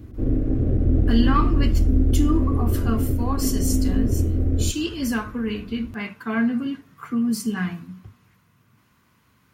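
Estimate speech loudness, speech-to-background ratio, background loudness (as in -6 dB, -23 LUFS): -26.5 LUFS, -4.0 dB, -22.5 LUFS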